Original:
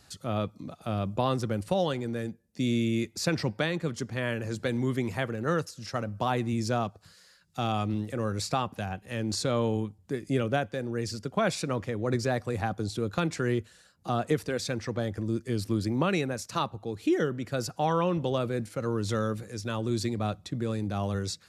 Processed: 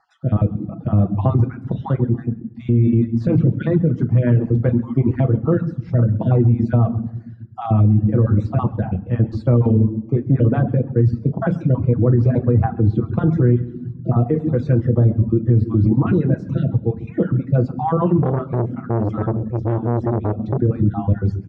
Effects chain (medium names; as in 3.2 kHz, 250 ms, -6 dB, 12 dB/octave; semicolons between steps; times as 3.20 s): random holes in the spectrogram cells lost 34%; bass shelf 280 Hz +8.5 dB; feedback delay 133 ms, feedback 28%, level -13 dB; reverberation RT60 0.85 s, pre-delay 6 ms, DRR 1.5 dB; reverb removal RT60 0.69 s; peaking EQ 160 Hz +6.5 dB 2.6 oct; peak limiter -12 dBFS, peak gain reduction 10 dB; low-pass 1.2 kHz 12 dB/octave; 18.22–20.62 s: transformer saturation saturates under 430 Hz; trim +5 dB